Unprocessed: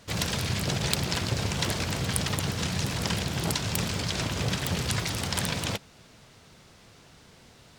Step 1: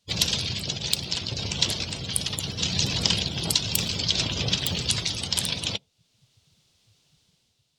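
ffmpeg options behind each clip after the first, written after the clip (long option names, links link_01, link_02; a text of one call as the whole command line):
ffmpeg -i in.wav -af "afftdn=noise_reduction=25:noise_floor=-37,highshelf=frequency=2400:width_type=q:width=1.5:gain=10,dynaudnorm=framelen=110:gausssize=9:maxgain=7.5dB,volume=-1dB" out.wav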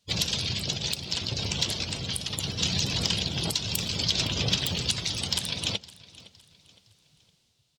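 ffmpeg -i in.wav -af "alimiter=limit=-8.5dB:level=0:latency=1:release=282,asoftclip=type=tanh:threshold=-9.5dB,aecho=1:1:512|1024|1536:0.0944|0.0359|0.0136" out.wav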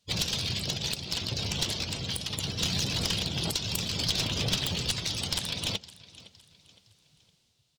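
ffmpeg -i in.wav -af "aeval=exprs='clip(val(0),-1,0.0531)':channel_layout=same,volume=-1dB" out.wav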